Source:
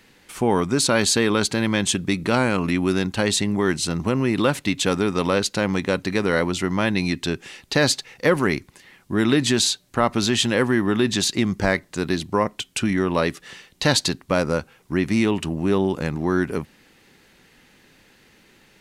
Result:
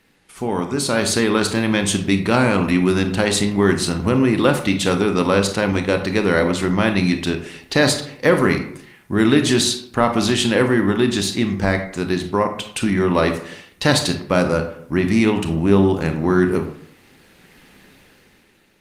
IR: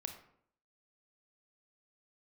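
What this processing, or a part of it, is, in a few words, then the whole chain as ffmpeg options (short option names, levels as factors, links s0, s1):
speakerphone in a meeting room: -filter_complex "[1:a]atrim=start_sample=2205[s0];[0:a][s0]afir=irnorm=-1:irlink=0,dynaudnorm=f=220:g=9:m=4.47,volume=0.891" -ar 48000 -c:a libopus -b:a 32k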